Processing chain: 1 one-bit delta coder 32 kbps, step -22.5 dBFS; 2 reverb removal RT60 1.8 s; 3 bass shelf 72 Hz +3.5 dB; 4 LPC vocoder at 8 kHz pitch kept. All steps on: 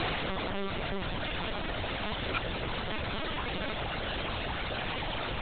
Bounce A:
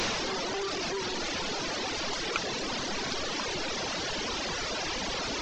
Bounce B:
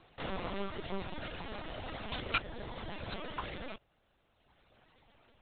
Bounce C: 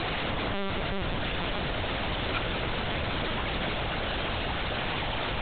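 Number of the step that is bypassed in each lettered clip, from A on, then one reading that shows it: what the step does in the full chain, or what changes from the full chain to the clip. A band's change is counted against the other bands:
4, 125 Hz band -8.0 dB; 1, 4 kHz band -2.0 dB; 2, loudness change +3.5 LU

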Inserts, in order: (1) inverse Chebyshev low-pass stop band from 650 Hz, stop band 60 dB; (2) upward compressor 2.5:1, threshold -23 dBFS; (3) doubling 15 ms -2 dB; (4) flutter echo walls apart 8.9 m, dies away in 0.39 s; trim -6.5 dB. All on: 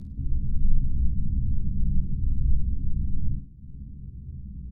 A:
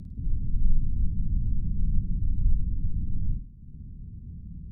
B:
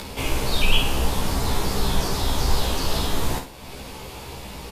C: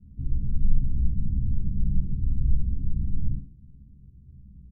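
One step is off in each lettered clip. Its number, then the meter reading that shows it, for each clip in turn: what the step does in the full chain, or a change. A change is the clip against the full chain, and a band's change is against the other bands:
3, loudness change -1.0 LU; 1, crest factor change +1.5 dB; 2, momentary loudness spread change -8 LU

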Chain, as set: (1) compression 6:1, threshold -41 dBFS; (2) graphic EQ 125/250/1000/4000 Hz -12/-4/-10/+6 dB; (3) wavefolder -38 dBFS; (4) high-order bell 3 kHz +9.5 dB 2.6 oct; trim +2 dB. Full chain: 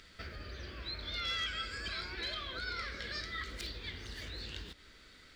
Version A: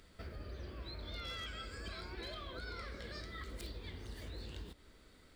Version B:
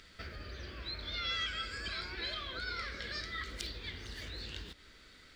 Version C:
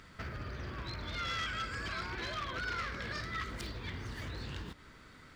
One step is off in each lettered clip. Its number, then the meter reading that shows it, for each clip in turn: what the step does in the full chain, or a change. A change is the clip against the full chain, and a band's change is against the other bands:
4, 4 kHz band -6.5 dB; 3, distortion -24 dB; 2, 4 kHz band -8.5 dB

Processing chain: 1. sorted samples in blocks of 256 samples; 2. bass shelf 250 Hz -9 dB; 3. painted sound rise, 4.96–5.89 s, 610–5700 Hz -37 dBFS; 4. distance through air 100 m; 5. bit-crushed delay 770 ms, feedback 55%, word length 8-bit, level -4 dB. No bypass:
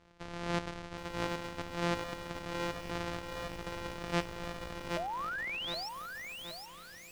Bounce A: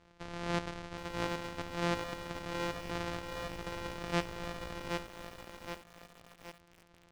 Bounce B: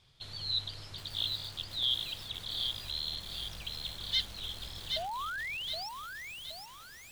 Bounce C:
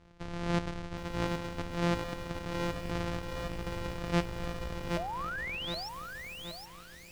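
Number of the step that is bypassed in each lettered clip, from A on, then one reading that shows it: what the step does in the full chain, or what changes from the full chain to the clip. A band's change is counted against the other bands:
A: 3, 4 kHz band -2.5 dB; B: 1, crest factor change -4.0 dB; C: 2, 125 Hz band +6.5 dB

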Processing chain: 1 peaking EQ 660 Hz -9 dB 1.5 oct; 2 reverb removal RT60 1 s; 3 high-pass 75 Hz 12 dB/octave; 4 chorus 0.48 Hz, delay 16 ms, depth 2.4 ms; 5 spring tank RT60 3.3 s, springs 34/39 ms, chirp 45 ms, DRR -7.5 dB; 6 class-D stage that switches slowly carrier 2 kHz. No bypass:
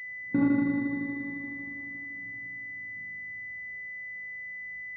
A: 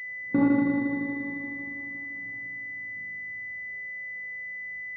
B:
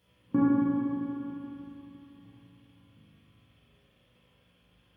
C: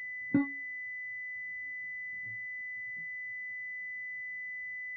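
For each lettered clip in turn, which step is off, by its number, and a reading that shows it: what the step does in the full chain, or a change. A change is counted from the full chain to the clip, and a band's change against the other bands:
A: 1, 500 Hz band +4.0 dB; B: 6, 2 kHz band -21.0 dB; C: 5, momentary loudness spread change -5 LU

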